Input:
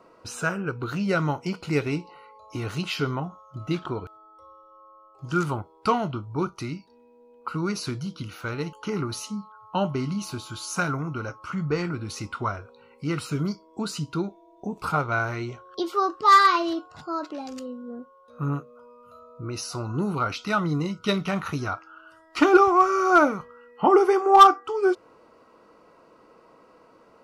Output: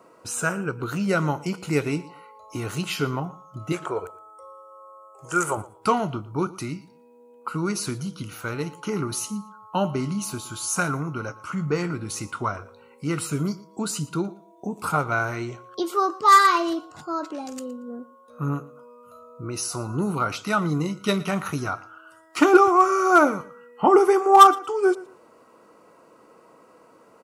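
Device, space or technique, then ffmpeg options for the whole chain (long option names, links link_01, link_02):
budget condenser microphone: -filter_complex "[0:a]asettb=1/sr,asplit=3[link_01][link_02][link_03];[link_01]atrim=end=3.724[link_04];[link_02]atrim=start=3.72:end=5.57,asetpts=PTS-STARTPTS,afade=type=in:duration=0.004:curve=qsin,afade=type=out:start_time=1.846:duration=0.004:curve=qsin,equalizer=frequency=125:width_type=o:width=1:gain=-8,equalizer=frequency=250:width_type=o:width=1:gain=-12,equalizer=frequency=500:width_type=o:width=1:gain=10,equalizer=frequency=2000:width_type=o:width=1:gain=6,equalizer=frequency=4000:width_type=o:width=1:gain=-9,equalizer=frequency=8000:width_type=o:width=1:gain=11[link_05];[link_03]atrim=start=5.566[link_06];[link_04][link_05]acrossfade=duration=0.004:curve1=hsin:curve2=qsin[link_07];[link_07][link_06]acrossfade=duration=0.004:curve1=qsin:curve2=hsin,highpass=100,highshelf=frequency=6200:width_type=q:width=1.5:gain=7.5,aecho=1:1:116|232:0.106|0.0222,volume=1.5dB"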